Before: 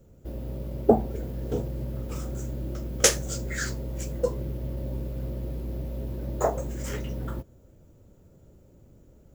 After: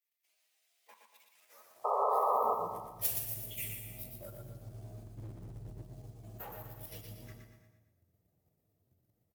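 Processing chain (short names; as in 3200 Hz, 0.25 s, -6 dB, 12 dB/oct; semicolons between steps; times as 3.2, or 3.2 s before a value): inharmonic rescaling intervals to 122%; 5.04–5.82 low shelf 240 Hz +11 dB; level quantiser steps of 11 dB; high-pass sweep 2400 Hz -> 98 Hz, 1.27–2.92; hard clip -28 dBFS, distortion -10 dB; pre-emphasis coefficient 0.8; 1.84–2.55 painted sound noise 400–1300 Hz -31 dBFS; feedback echo 0.118 s, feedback 43%, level -5 dB; non-linear reverb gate 0.37 s flat, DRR 10.5 dB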